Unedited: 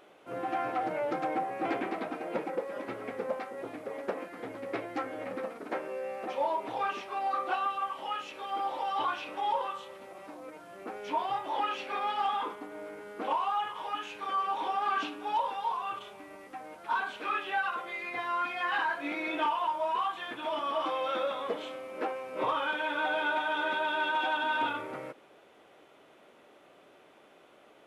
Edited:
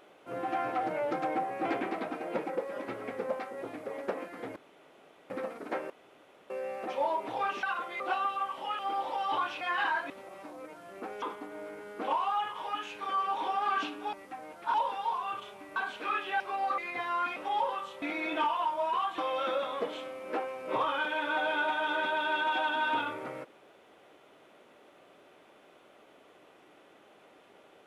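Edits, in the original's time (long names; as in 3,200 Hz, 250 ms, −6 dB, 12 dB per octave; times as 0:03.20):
0:04.56–0:05.30: fill with room tone
0:05.90: splice in room tone 0.60 s
0:07.03–0:07.41: swap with 0:17.60–0:17.97
0:08.20–0:08.46: remove
0:09.28–0:09.94: swap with 0:18.55–0:19.04
0:11.06–0:12.42: remove
0:16.35–0:16.96: move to 0:15.33
0:20.20–0:20.86: remove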